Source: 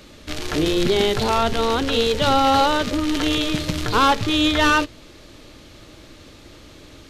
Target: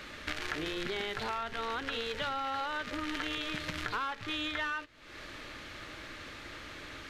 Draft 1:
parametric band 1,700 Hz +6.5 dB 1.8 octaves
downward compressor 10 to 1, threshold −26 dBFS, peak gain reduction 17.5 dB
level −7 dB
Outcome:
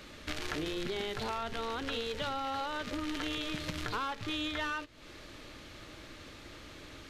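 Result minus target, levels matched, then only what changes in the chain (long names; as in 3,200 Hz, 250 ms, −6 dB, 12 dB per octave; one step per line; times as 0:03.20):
2,000 Hz band −4.0 dB
change: parametric band 1,700 Hz +15 dB 1.8 octaves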